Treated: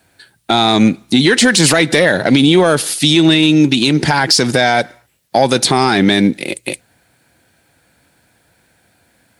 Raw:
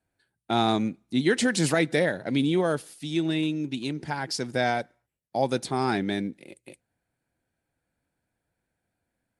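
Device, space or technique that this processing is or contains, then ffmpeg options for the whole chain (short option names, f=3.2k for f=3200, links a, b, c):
mastering chain: -af "highpass=57,equalizer=f=4k:t=o:w=0.77:g=3,acompressor=threshold=-28dB:ratio=2.5,asoftclip=type=tanh:threshold=-18.5dB,tiltshelf=f=970:g=-3,alimiter=level_in=26dB:limit=-1dB:release=50:level=0:latency=1,volume=-1dB"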